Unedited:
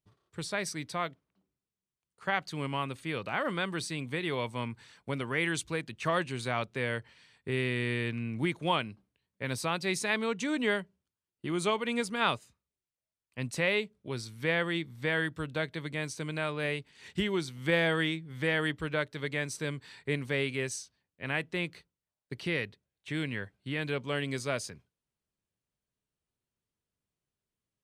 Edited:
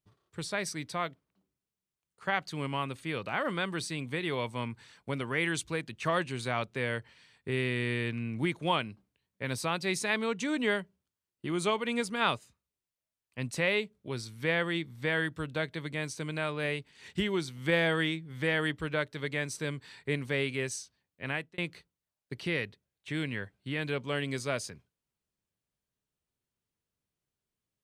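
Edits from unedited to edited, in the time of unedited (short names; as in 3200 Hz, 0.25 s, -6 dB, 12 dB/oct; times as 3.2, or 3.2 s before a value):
21.29–21.58 fade out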